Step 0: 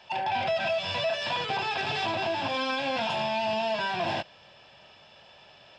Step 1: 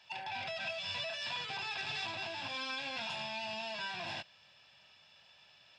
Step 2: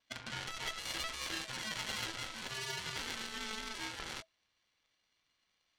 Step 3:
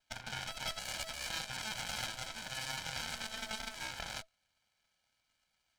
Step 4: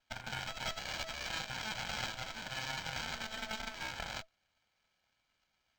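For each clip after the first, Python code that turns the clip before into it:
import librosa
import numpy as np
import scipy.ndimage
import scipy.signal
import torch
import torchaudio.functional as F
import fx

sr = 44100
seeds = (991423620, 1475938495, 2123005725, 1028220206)

y1 = fx.highpass(x, sr, hz=150.0, slope=6)
y1 = fx.peak_eq(y1, sr, hz=460.0, db=-13.5, octaves=2.9)
y1 = fx.notch(y1, sr, hz=3100.0, q=17.0)
y1 = y1 * 10.0 ** (-4.0 / 20.0)
y2 = fx.cheby_harmonics(y1, sr, harmonics=(4, 5, 7), levels_db=(-12, -22, -15), full_scale_db=-26.5)
y2 = fx.vibrato(y2, sr, rate_hz=0.4, depth_cents=11.0)
y2 = y2 * np.sin(2.0 * np.pi * 650.0 * np.arange(len(y2)) / sr)
y2 = y2 * 10.0 ** (1.5 / 20.0)
y3 = fx.lower_of_two(y2, sr, delay_ms=1.3)
y3 = y3 * 10.0 ** (1.0 / 20.0)
y4 = np.interp(np.arange(len(y3)), np.arange(len(y3))[::4], y3[::4])
y4 = y4 * 10.0 ** (2.0 / 20.0)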